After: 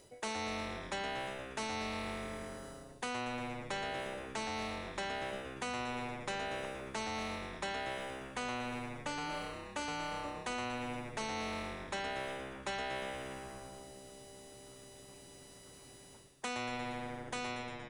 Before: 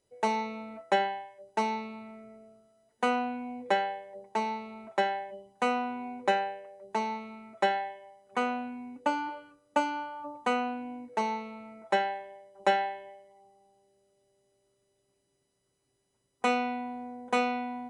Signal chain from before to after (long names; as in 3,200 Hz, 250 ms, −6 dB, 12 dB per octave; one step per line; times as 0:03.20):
fade-out on the ending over 2.03 s
reversed playback
downward compressor 6 to 1, threshold −41 dBFS, peak gain reduction 20.5 dB
reversed playback
echo with shifted repeats 117 ms, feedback 63%, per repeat −130 Hz, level −12 dB
every bin compressed towards the loudest bin 2 to 1
level +6.5 dB